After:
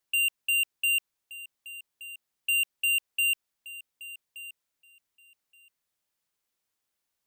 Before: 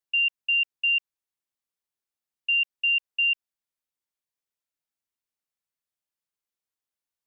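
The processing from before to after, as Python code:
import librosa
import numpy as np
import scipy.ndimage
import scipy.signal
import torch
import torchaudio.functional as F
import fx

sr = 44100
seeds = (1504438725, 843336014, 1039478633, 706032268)

p1 = np.clip(10.0 ** (32.0 / 20.0) * x, -1.0, 1.0) / 10.0 ** (32.0 / 20.0)
p2 = p1 + fx.echo_feedback(p1, sr, ms=1174, feedback_pct=15, wet_db=-17, dry=0)
y = p2 * 10.0 ** (8.0 / 20.0)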